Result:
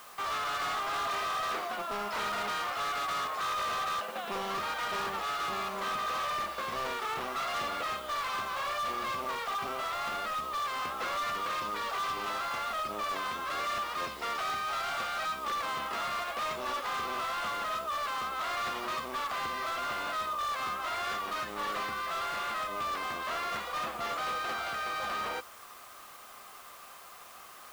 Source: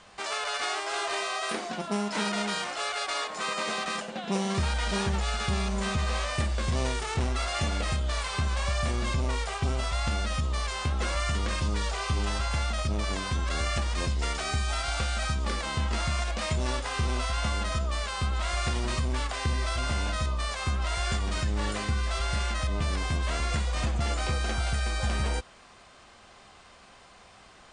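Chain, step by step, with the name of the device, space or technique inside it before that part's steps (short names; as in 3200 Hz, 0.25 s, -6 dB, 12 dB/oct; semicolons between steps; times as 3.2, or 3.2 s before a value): drive-through speaker (BPF 440–3500 Hz; bell 1200 Hz +10 dB 0.28 oct; hard clip -30.5 dBFS, distortion -9 dB; white noise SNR 20 dB)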